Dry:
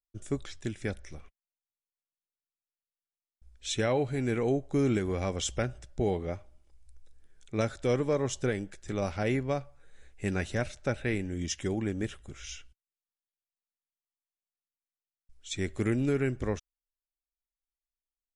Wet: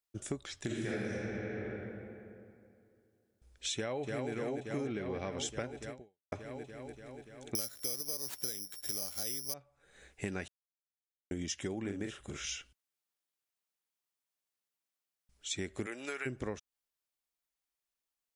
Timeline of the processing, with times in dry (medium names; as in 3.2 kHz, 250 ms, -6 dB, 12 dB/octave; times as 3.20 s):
0.66–1.09 s: reverb throw, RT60 2.5 s, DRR -10.5 dB
3.74–4.31 s: echo throw 290 ms, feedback 75%, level -3.5 dB
4.87–5.38 s: Savitzky-Golay filter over 15 samples
5.90–6.32 s: fade out exponential
7.55–9.54 s: careless resampling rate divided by 8×, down none, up zero stuff
10.48–11.31 s: mute
11.81–12.45 s: doubling 40 ms -5 dB
15.85–16.25 s: high-pass 550 Hz -> 1.2 kHz
whole clip: high-pass 180 Hz 6 dB/octave; compression 6:1, threshold -40 dBFS; trim +5 dB